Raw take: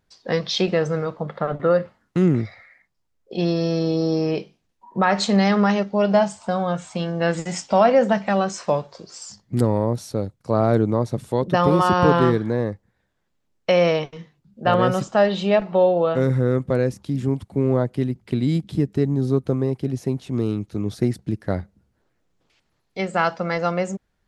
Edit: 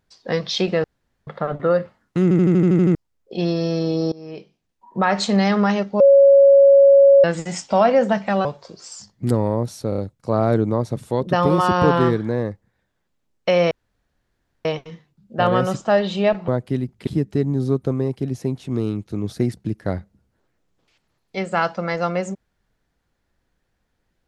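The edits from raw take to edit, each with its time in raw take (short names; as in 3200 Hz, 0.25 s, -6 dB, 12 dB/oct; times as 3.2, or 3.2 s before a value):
0.84–1.27 room tone
2.23 stutter in place 0.08 s, 9 plays
4.12–5.02 fade in, from -24 dB
6–7.24 bleep 555 Hz -7 dBFS
8.45–8.75 cut
10.19 stutter 0.03 s, 4 plays
13.92 insert room tone 0.94 s
15.75–17.75 cut
18.34–18.69 cut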